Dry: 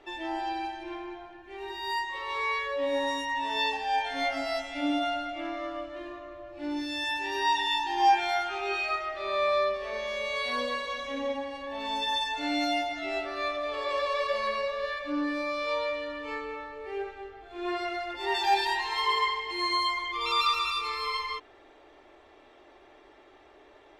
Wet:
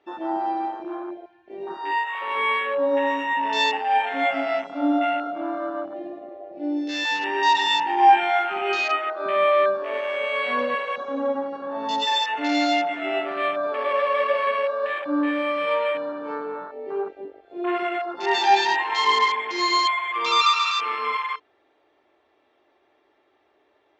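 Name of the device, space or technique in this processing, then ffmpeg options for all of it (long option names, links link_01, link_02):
over-cleaned archive recording: -af "highpass=110,lowpass=5700,afwtdn=0.0178,volume=7.5dB"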